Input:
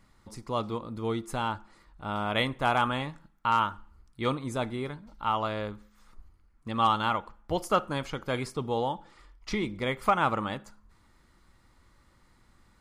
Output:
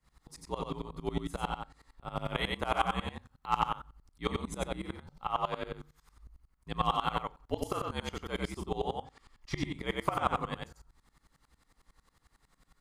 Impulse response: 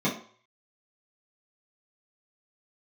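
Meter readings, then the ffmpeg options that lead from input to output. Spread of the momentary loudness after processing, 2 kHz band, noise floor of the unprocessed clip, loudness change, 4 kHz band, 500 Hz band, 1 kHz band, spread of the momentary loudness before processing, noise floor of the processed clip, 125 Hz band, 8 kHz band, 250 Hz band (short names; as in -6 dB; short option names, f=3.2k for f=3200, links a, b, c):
12 LU, -6.0 dB, -63 dBFS, -5.5 dB, -4.0 dB, -5.5 dB, -5.5 dB, 14 LU, -75 dBFS, -4.0 dB, -3.0 dB, -5.5 dB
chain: -filter_complex "[0:a]highshelf=f=5k:g=5,afreqshift=-62,asplit=2[a][b];[b]adelay=36,volume=-12dB[c];[a][c]amix=inputs=2:normalize=0,aecho=1:1:96:0.708,aeval=exprs='val(0)*pow(10,-22*if(lt(mod(-11*n/s,1),2*abs(-11)/1000),1-mod(-11*n/s,1)/(2*abs(-11)/1000),(mod(-11*n/s,1)-2*abs(-11)/1000)/(1-2*abs(-11)/1000))/20)':c=same"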